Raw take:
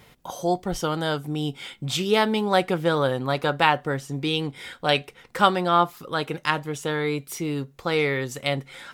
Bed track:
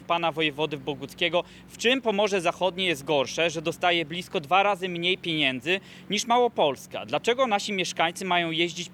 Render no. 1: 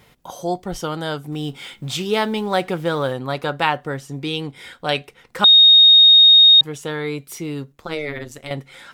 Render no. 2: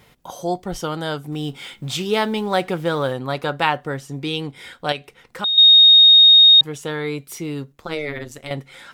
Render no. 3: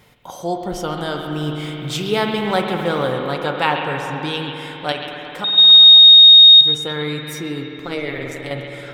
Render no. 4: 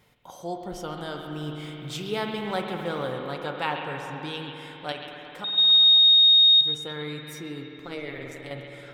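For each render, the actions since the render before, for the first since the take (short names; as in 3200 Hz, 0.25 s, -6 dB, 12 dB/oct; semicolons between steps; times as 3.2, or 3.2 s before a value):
1.32–3.13 G.711 law mismatch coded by mu; 5.44–6.61 bleep 3720 Hz -6 dBFS; 7.72–8.51 AM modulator 150 Hz, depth 80%
4.92–5.58 compressor 1.5:1, threshold -38 dBFS
delay with a stepping band-pass 0.133 s, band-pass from 2900 Hz, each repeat -0.7 oct, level -7 dB; spring tank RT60 4 s, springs 53 ms, chirp 70 ms, DRR 3 dB
gain -10 dB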